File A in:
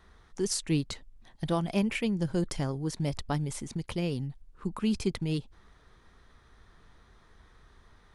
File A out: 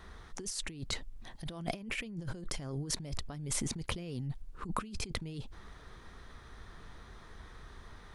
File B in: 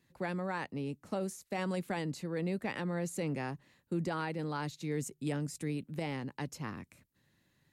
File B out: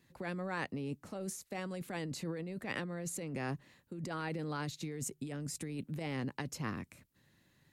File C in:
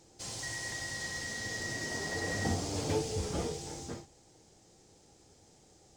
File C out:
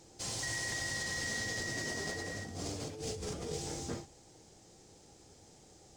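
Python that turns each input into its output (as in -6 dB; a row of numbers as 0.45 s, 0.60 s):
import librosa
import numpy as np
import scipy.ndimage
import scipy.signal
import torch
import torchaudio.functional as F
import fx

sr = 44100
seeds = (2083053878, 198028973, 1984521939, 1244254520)

y = fx.dynamic_eq(x, sr, hz=880.0, q=6.0, threshold_db=-56.0, ratio=4.0, max_db=-6)
y = fx.over_compress(y, sr, threshold_db=-39.0, ratio=-1.0)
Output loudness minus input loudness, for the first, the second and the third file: -7.5 LU, -3.0 LU, -1.5 LU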